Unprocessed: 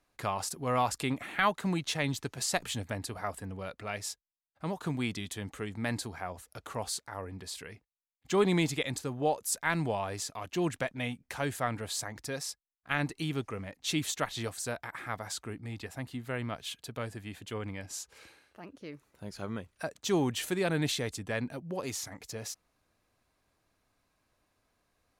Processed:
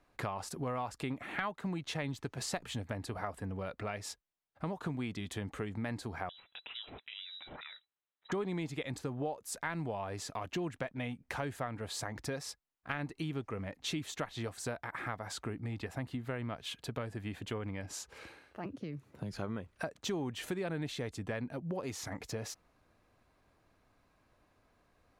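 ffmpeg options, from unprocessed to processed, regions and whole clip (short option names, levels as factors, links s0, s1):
-filter_complex "[0:a]asettb=1/sr,asplit=3[s0][s1][s2];[s0]atrim=end=6.294[s3];[s1]atrim=start=6.29:end=8.32,asetpts=PTS-STARTPTS,afade=t=in:d=0.004:c=qsin,afade=t=out:st=2.026:d=0.004:c=qsin,lowpass=f=3400:t=q:w=0.5098,lowpass=f=3400:t=q:w=0.6013,lowpass=f=3400:t=q:w=0.9,lowpass=f=3400:t=q:w=2.563,afreqshift=-4000,acompressor=threshold=0.00355:ratio=2:attack=3.2:release=140:knee=1:detection=peak[s4];[s2]atrim=start=8.316[s5];[s3][s4]acrossfade=d=0.004:c1=hsin:c2=qsin[s6];[s6][s5]acrossfade=d=0.004:c1=qsin:c2=hsin,asettb=1/sr,asplit=3[s7][s8][s9];[s7]atrim=end=18.654[s10];[s8]atrim=start=18.65:end=19.33,asetpts=PTS-STARTPTS,afade=t=in:d=0.004:c=qsin,afade=t=out:st=0.676:d=0.004:c=qsin,highpass=f=93:w=0.5412,highpass=f=93:w=1.3066,lowshelf=f=410:g=11.5,acrossover=split=130|2100[s11][s12][s13];[s11]acompressor=threshold=0.00355:ratio=4[s14];[s12]acompressor=threshold=0.00355:ratio=4[s15];[s13]acompressor=threshold=0.00158:ratio=4[s16];[s14][s15][s16]amix=inputs=3:normalize=0[s17];[s9]atrim=start=19.326[s18];[s10][s17]acrossfade=d=0.004:c1=hsin:c2=qsin[s19];[s19][s18]acrossfade=d=0.004:c1=qsin:c2=hsin,highshelf=f=3600:g=-12,acompressor=threshold=0.00794:ratio=5,volume=2.11"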